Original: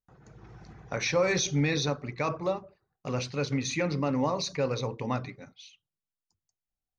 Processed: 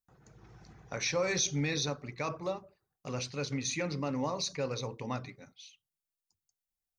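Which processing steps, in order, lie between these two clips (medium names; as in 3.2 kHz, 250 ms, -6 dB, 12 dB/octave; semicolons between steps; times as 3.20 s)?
treble shelf 5.3 kHz +11 dB; trim -6 dB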